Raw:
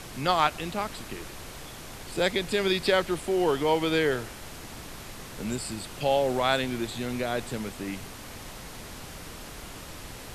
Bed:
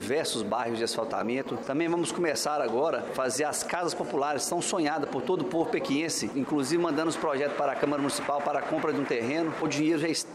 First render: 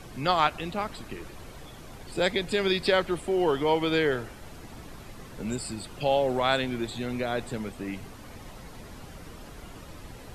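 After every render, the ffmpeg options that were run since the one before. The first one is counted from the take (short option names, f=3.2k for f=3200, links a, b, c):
-af "afftdn=nr=9:nf=-43"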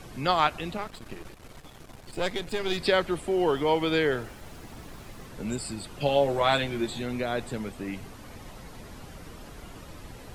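-filter_complex "[0:a]asettb=1/sr,asplit=3[a][b][c];[a]atrim=end=0.774[d];[b]atrim=start=0.77:end=2.78,asetpts=PTS-STARTPTS,afade=t=in:d=0.004:c=qsin,afade=t=out:st=2.006:d=0.004:c=qsin,aeval=exprs='if(lt(val(0),0),0.251*val(0),val(0))':c=same[e];[c]atrim=start=2.776[f];[d][e]acrossfade=d=0.004:c1=hsin:c2=qsin[g];[g][f]acrossfade=d=0.004:c1=qsin:c2=hsin,asettb=1/sr,asplit=3[h][i][j];[h]atrim=end=3.464[k];[i]atrim=start=3.46:end=5.26,asetpts=PTS-STARTPTS,afade=t=in:d=0.004:c=qsin,afade=t=out:st=1.796:d=0.004:c=qsin,aeval=exprs='val(0)*gte(abs(val(0)),0.00237)':c=same[l];[j]atrim=start=5.256[m];[k][l]acrossfade=d=0.004:c1=hsin:c2=qsin[n];[n][m]acrossfade=d=0.004:c1=qsin:c2=hsin,asettb=1/sr,asplit=3[o][p][q];[o]atrim=end=5.994[r];[p]atrim=start=5.99:end=7.02,asetpts=PTS-STARTPTS,afade=t=in:d=0.004:c=qsin,afade=t=out:st=1.026:d=0.004:c=qsin,asplit=2[s][t];[t]adelay=14,volume=-4dB[u];[s][u]amix=inputs=2:normalize=0,atrim=end_sample=45423[v];[q]atrim=start=7.016[w];[r][v]acrossfade=d=0.004:c1=hsin:c2=qsin[x];[x][w]acrossfade=d=0.004:c1=qsin:c2=hsin"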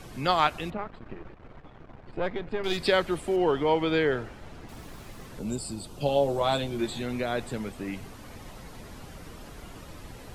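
-filter_complex "[0:a]asettb=1/sr,asplit=3[a][b][c];[a]atrim=end=0.704[d];[b]atrim=start=0.7:end=2.64,asetpts=PTS-STARTPTS,afade=t=in:d=0.004:c=qsin,afade=t=out:st=1.936:d=0.004:c=qsin,lowpass=1.8k[e];[c]atrim=start=2.636[f];[d][e]acrossfade=d=0.004:c1=hsin:c2=qsin[g];[g][f]acrossfade=d=0.004:c1=qsin:c2=hsin,asettb=1/sr,asplit=3[h][i][j];[h]atrim=end=3.364[k];[i]atrim=start=3.36:end=4.69,asetpts=PTS-STARTPTS,afade=t=in:d=0.004:c=qsin,afade=t=out:st=1.326:d=0.004:c=qsin,aemphasis=mode=reproduction:type=50fm[l];[j]atrim=start=4.686[m];[k][l]acrossfade=d=0.004:c1=hsin:c2=qsin[n];[n][m]acrossfade=d=0.004:c1=qsin:c2=hsin,asettb=1/sr,asplit=3[o][p][q];[o]atrim=end=5.394[r];[p]atrim=start=5.39:end=6.79,asetpts=PTS-STARTPTS,afade=t=in:d=0.004:c=qsin,afade=t=out:st=1.396:d=0.004:c=qsin,equalizer=f=1.9k:t=o:w=1.1:g=-11.5[s];[q]atrim=start=6.786[t];[r][s]acrossfade=d=0.004:c1=hsin:c2=qsin[u];[u][t]acrossfade=d=0.004:c1=qsin:c2=hsin"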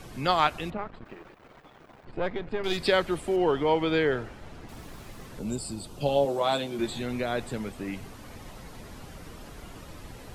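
-filter_complex "[0:a]asettb=1/sr,asplit=3[a][b][c];[a]atrim=end=1.054[d];[b]atrim=start=1.05:end=2.05,asetpts=PTS-STARTPTS,afade=t=in:d=0.004:c=qsin,afade=t=out:st=0.996:d=0.004:c=qsin,aemphasis=mode=production:type=bsi[e];[c]atrim=start=2.046[f];[d][e]acrossfade=d=0.004:c1=hsin:c2=qsin[g];[g][f]acrossfade=d=0.004:c1=qsin:c2=hsin,asettb=1/sr,asplit=3[h][i][j];[h]atrim=end=6.254[k];[i]atrim=start=6.25:end=6.79,asetpts=PTS-STARTPTS,afade=t=in:d=0.004:c=qsin,afade=t=out:st=0.536:d=0.004:c=qsin,highpass=180[l];[j]atrim=start=6.786[m];[k][l]acrossfade=d=0.004:c1=hsin:c2=qsin[n];[n][m]acrossfade=d=0.004:c1=qsin:c2=hsin"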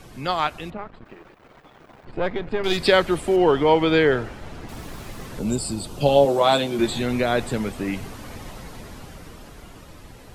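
-af "dynaudnorm=f=280:g=13:m=9dB"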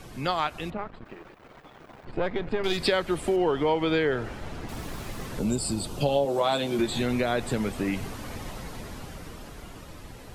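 -af "acompressor=threshold=-23dB:ratio=3"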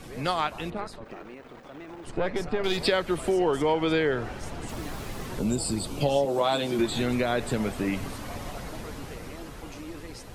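-filter_complex "[1:a]volume=-16dB[a];[0:a][a]amix=inputs=2:normalize=0"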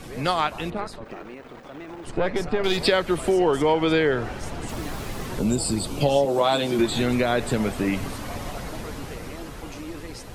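-af "volume=4dB"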